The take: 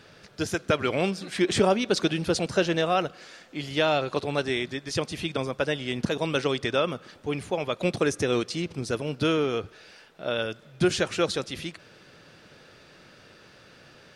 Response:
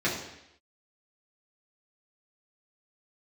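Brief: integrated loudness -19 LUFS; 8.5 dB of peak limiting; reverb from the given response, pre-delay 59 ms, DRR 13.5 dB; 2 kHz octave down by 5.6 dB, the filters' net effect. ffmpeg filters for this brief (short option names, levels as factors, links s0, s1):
-filter_complex "[0:a]equalizer=f=2000:t=o:g=-8,alimiter=limit=0.126:level=0:latency=1,asplit=2[s0][s1];[1:a]atrim=start_sample=2205,adelay=59[s2];[s1][s2]afir=irnorm=-1:irlink=0,volume=0.0531[s3];[s0][s3]amix=inputs=2:normalize=0,volume=3.55"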